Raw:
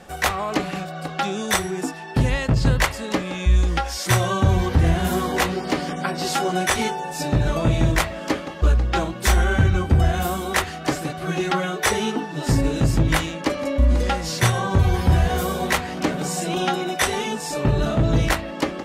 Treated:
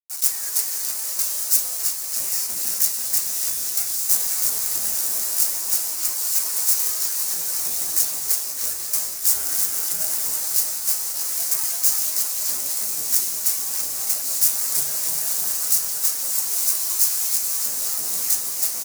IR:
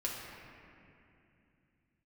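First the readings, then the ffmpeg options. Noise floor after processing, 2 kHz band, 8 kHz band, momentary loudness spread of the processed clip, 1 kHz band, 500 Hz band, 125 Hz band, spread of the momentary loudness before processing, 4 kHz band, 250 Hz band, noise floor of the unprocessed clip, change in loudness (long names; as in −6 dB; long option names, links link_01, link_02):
−28 dBFS, −14.5 dB, +11.5 dB, 4 LU, −18.0 dB, −21.0 dB, below −30 dB, 7 LU, −0.5 dB, below −25 dB, −33 dBFS, +2.5 dB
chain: -af "highshelf=frequency=4500:width_type=q:width=3:gain=-7,aeval=exprs='abs(val(0))':channel_layout=same,acrusher=bits=4:mix=0:aa=0.000001,afreqshift=-36,highpass=frequency=830:poles=1,aecho=1:1:330|610.5|848.9|1052|1224:0.631|0.398|0.251|0.158|0.1,flanger=delay=6.3:depth=8.5:regen=54:speed=0.5:shape=sinusoidal,aeval=exprs='(mod(10.6*val(0)+1,2)-1)/10.6':channel_layout=same,aexciter=amount=13.9:drive=4.7:freq=5000,flanger=delay=5.5:depth=9.4:regen=48:speed=0.13:shape=triangular,volume=-6dB"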